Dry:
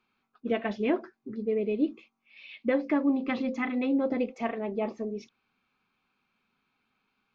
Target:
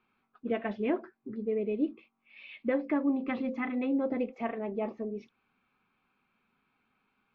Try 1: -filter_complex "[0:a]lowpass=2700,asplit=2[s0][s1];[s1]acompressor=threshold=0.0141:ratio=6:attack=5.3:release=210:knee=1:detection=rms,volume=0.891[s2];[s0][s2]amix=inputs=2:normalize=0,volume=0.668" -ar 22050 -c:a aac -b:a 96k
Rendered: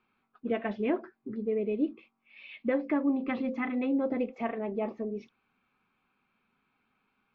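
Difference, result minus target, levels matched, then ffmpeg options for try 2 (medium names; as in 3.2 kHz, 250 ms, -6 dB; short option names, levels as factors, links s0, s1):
compression: peak gain reduction -7.5 dB
-filter_complex "[0:a]lowpass=2700,asplit=2[s0][s1];[s1]acompressor=threshold=0.00501:ratio=6:attack=5.3:release=210:knee=1:detection=rms,volume=0.891[s2];[s0][s2]amix=inputs=2:normalize=0,volume=0.668" -ar 22050 -c:a aac -b:a 96k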